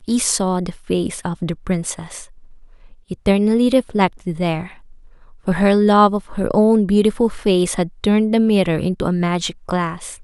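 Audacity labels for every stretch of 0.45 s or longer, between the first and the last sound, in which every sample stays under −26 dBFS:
2.230000	3.110000	silence
4.670000	5.480000	silence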